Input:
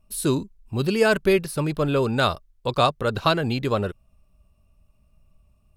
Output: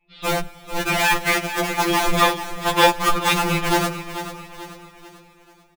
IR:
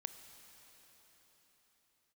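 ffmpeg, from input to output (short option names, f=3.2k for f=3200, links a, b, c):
-filter_complex "[0:a]adynamicequalizer=threshold=0.0316:dfrequency=630:dqfactor=0.99:tfrequency=630:tqfactor=0.99:attack=5:release=100:ratio=0.375:range=2:mode=boostabove:tftype=bell,aeval=exprs='(tanh(2.51*val(0)+0.45)-tanh(0.45))/2.51':c=same,highpass=f=150:t=q:w=0.5412,highpass=f=150:t=q:w=1.307,lowpass=f=3.5k:t=q:w=0.5176,lowpass=f=3.5k:t=q:w=0.7071,lowpass=f=3.5k:t=q:w=1.932,afreqshift=-220,acrossover=split=570[a][b];[a]aeval=exprs='(mod(17.8*val(0)+1,2)-1)/17.8':c=same[c];[b]asplit=2[d][e];[e]adelay=15,volume=-11dB[f];[d][f]amix=inputs=2:normalize=0[g];[c][g]amix=inputs=2:normalize=0,aecho=1:1:439|878|1317|1756:0.251|0.111|0.0486|0.0214,asplit=2[h][i];[1:a]atrim=start_sample=2205[j];[i][j]afir=irnorm=-1:irlink=0,volume=-2dB[k];[h][k]amix=inputs=2:normalize=0,afftfilt=real='re*2.83*eq(mod(b,8),0)':imag='im*2.83*eq(mod(b,8),0)':win_size=2048:overlap=0.75,volume=7.5dB"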